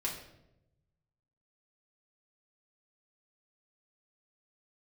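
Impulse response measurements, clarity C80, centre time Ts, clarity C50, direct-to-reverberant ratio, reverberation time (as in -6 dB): 9.0 dB, 32 ms, 6.0 dB, -4.0 dB, 0.85 s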